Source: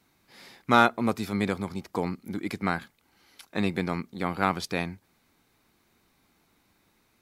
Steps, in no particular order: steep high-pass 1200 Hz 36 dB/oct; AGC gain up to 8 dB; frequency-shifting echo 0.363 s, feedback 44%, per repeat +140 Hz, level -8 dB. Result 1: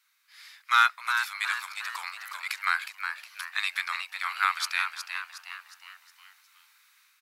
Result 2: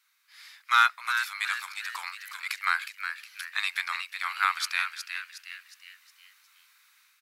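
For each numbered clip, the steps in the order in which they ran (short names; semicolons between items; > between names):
AGC > frequency-shifting echo > steep high-pass; AGC > steep high-pass > frequency-shifting echo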